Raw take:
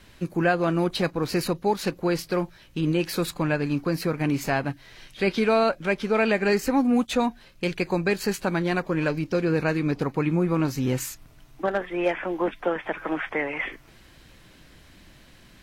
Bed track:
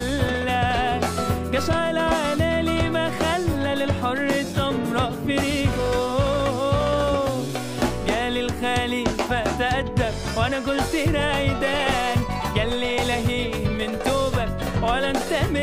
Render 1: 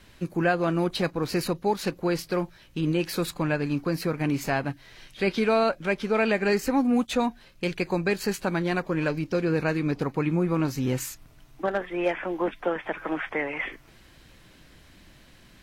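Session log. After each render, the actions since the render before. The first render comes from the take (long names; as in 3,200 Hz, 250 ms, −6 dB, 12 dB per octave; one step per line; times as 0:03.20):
level −1.5 dB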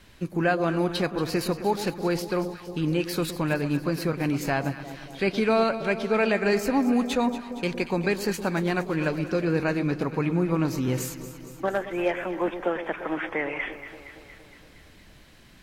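delay that swaps between a low-pass and a high-pass 116 ms, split 970 Hz, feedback 79%, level −11 dB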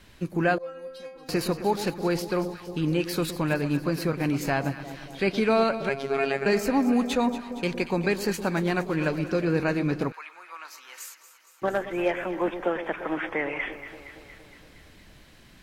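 0:00.58–0:01.29: stiff-string resonator 260 Hz, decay 0.45 s, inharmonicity 0.002
0:05.89–0:06.46: phases set to zero 137 Hz
0:10.12–0:11.62: four-pole ladder high-pass 920 Hz, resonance 25%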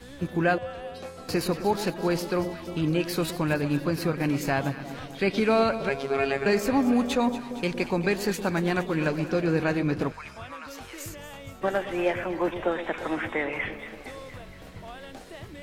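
mix in bed track −20.5 dB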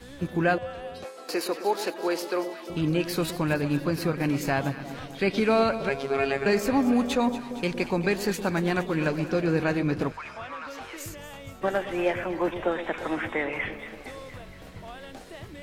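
0:01.04–0:02.70: high-pass filter 310 Hz 24 dB per octave
0:10.17–0:10.97: mid-hump overdrive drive 14 dB, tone 1,700 Hz, clips at −26.5 dBFS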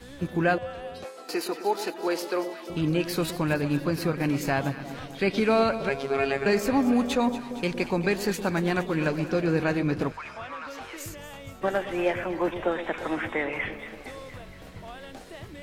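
0:01.22–0:02.07: notch comb filter 550 Hz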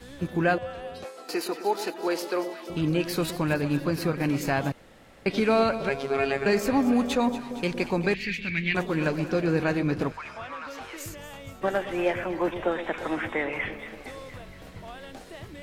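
0:04.72–0:05.26: fill with room tone
0:08.14–0:08.75: drawn EQ curve 140 Hz 0 dB, 840 Hz −25 dB, 1,400 Hz −12 dB, 2,200 Hz +14 dB, 9,100 Hz −20 dB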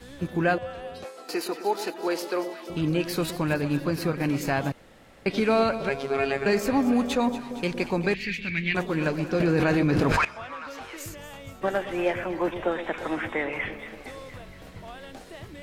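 0:09.40–0:10.25: envelope flattener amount 100%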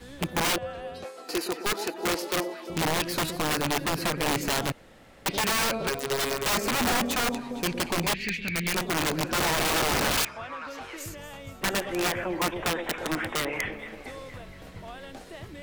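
wrap-around overflow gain 20 dB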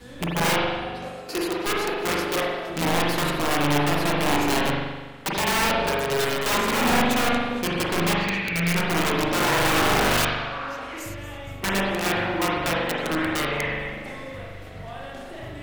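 spring reverb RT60 1.3 s, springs 41 ms, chirp 65 ms, DRR −3.5 dB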